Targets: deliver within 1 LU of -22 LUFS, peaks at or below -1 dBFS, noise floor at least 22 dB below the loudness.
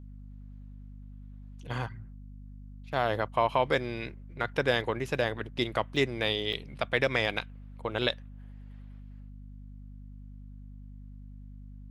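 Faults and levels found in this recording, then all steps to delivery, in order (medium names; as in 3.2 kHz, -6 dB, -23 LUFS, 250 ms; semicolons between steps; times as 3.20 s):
dropouts 2; longest dropout 1.8 ms; hum 50 Hz; highest harmonic 250 Hz; hum level -43 dBFS; loudness -30.5 LUFS; peak level -11.0 dBFS; loudness target -22.0 LUFS
-> interpolate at 5.96/6.53 s, 1.8 ms; de-hum 50 Hz, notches 5; trim +8.5 dB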